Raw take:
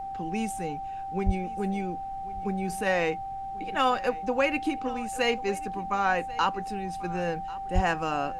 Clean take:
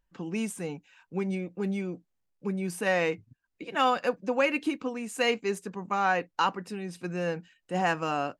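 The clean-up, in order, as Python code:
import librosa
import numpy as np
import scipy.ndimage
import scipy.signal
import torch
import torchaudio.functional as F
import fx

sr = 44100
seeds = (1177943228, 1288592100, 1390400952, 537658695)

y = fx.notch(x, sr, hz=780.0, q=30.0)
y = fx.highpass(y, sr, hz=140.0, slope=24, at=(1.25, 1.37), fade=0.02)
y = fx.highpass(y, sr, hz=140.0, slope=24, at=(7.74, 7.86), fade=0.02)
y = fx.noise_reduce(y, sr, print_start_s=3.16, print_end_s=3.66, reduce_db=30.0)
y = fx.fix_echo_inverse(y, sr, delay_ms=1090, level_db=-19.5)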